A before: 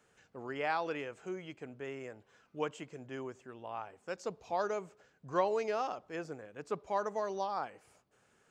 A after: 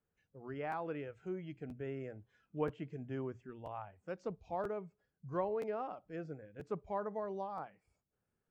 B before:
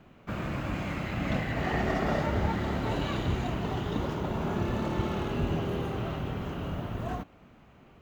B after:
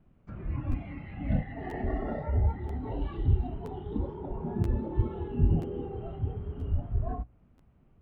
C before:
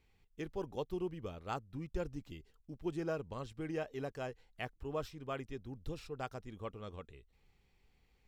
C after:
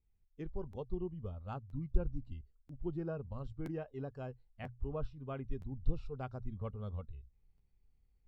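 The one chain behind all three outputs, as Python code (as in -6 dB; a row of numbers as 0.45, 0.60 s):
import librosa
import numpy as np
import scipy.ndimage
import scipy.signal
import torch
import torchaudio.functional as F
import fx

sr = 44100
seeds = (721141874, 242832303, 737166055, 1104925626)

y = fx.rider(x, sr, range_db=3, speed_s=2.0)
y = fx.env_lowpass_down(y, sr, base_hz=2600.0, full_db=-31.0)
y = fx.hum_notches(y, sr, base_hz=60, count=2)
y = fx.noise_reduce_blind(y, sr, reduce_db=13)
y = fx.riaa(y, sr, side='playback')
y = fx.buffer_crackle(y, sr, first_s=0.71, period_s=0.98, block=512, kind='repeat')
y = y * librosa.db_to_amplitude(-6.0)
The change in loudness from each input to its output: -4.0, -1.0, -0.5 LU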